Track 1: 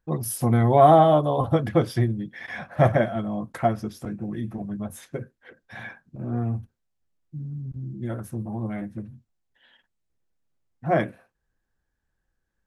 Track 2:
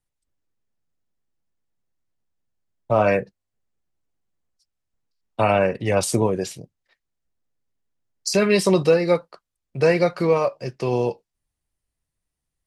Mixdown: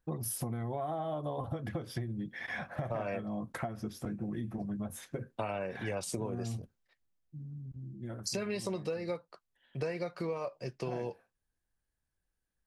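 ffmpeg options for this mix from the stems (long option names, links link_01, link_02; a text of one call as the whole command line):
ffmpeg -i stem1.wav -i stem2.wav -filter_complex "[0:a]acompressor=threshold=-24dB:ratio=6,volume=-3dB,afade=type=out:start_time=6.76:duration=0.49:silence=0.421697[link_01];[1:a]volume=-8.5dB[link_02];[link_01][link_02]amix=inputs=2:normalize=0,acompressor=threshold=-33dB:ratio=6" out.wav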